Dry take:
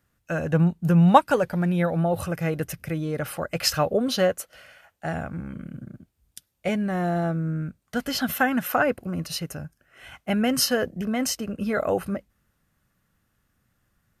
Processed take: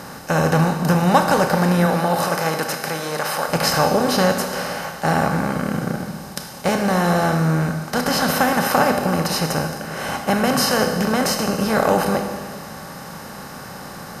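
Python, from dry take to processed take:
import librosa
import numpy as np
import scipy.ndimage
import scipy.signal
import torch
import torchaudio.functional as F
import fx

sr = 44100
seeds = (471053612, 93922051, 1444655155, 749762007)

y = fx.bin_compress(x, sr, power=0.4)
y = fx.highpass(y, sr, hz=fx.line((1.86, 240.0), (3.47, 950.0)), slope=6, at=(1.86, 3.47), fade=0.02)
y = fx.rev_schroeder(y, sr, rt60_s=1.5, comb_ms=25, drr_db=4.5)
y = F.gain(torch.from_numpy(y), -2.0).numpy()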